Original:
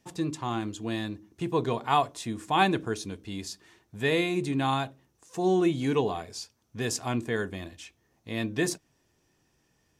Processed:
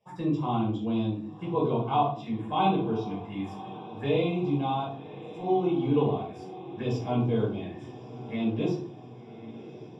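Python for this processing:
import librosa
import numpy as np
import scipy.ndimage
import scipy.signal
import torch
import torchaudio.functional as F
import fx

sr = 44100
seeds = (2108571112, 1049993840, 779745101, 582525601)

y = scipy.signal.sosfilt(scipy.signal.butter(2, 130.0, 'highpass', fs=sr, output='sos'), x)
y = fx.rider(y, sr, range_db=4, speed_s=2.0)
y = scipy.signal.savgol_filter(y, 25, 4, mode='constant')
y = fx.env_phaser(y, sr, low_hz=270.0, high_hz=1800.0, full_db=-28.5)
y = fx.echo_diffused(y, sr, ms=1105, feedback_pct=62, wet_db=-15.5)
y = fx.room_shoebox(y, sr, seeds[0], volume_m3=420.0, walls='furnished', distance_m=5.4)
y = y * 10.0 ** (-8.0 / 20.0)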